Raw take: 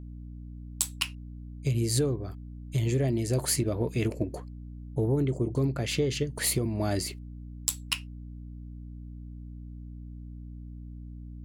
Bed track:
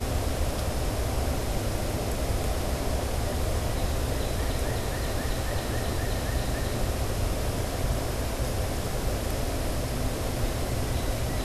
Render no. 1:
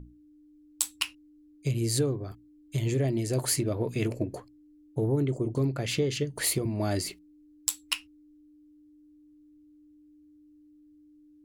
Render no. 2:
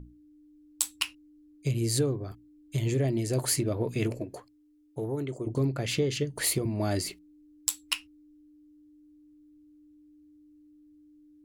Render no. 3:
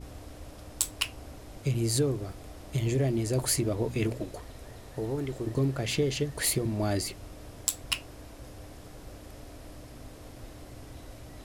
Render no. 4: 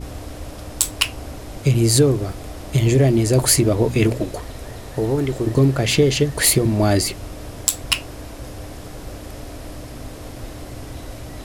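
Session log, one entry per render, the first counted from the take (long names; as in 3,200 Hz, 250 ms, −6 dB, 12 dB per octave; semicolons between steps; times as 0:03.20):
mains-hum notches 60/120/180/240 Hz
0:04.20–0:05.47: low-shelf EQ 370 Hz −9.5 dB
mix in bed track −17.5 dB
level +12 dB; brickwall limiter −1 dBFS, peak gain reduction 3 dB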